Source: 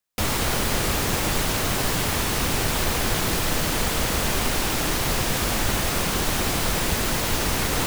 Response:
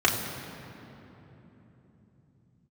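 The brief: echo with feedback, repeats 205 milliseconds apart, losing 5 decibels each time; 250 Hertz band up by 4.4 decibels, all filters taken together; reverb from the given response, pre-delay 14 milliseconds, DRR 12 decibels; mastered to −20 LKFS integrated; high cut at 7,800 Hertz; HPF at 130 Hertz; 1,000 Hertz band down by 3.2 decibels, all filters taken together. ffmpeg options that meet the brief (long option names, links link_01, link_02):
-filter_complex "[0:a]highpass=130,lowpass=7800,equalizer=frequency=250:width_type=o:gain=6.5,equalizer=frequency=1000:width_type=o:gain=-4.5,aecho=1:1:205|410|615|820|1025|1230|1435:0.562|0.315|0.176|0.0988|0.0553|0.031|0.0173,asplit=2[link_01][link_02];[1:a]atrim=start_sample=2205,adelay=14[link_03];[link_02][link_03]afir=irnorm=-1:irlink=0,volume=-28dB[link_04];[link_01][link_04]amix=inputs=2:normalize=0,volume=2.5dB"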